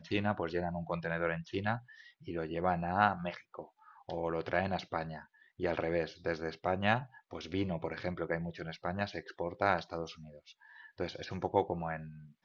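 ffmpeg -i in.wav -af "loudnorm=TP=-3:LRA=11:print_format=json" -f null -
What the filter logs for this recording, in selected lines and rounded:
"input_i" : "-35.7",
"input_tp" : "-11.2",
"input_lra" : "2.0",
"input_thresh" : "-46.5",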